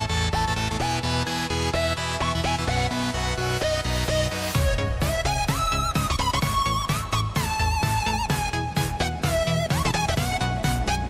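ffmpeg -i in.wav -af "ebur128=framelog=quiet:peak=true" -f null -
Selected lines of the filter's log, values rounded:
Integrated loudness:
  I:         -24.3 LUFS
  Threshold: -34.2 LUFS
Loudness range:
  LRA:         0.8 LU
  Threshold: -44.2 LUFS
  LRA low:   -24.6 LUFS
  LRA high:  -23.8 LUFS
True peak:
  Peak:      -11.8 dBFS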